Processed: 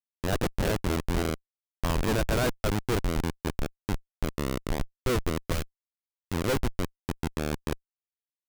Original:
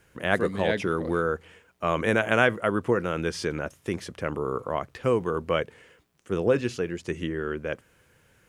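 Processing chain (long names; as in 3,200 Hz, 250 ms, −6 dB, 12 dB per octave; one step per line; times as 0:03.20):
tube saturation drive 12 dB, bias 0.6
comparator with hysteresis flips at −25 dBFS
0:05.52–0:06.33: parametric band 590 Hz −9 dB 2.9 octaves
level +7 dB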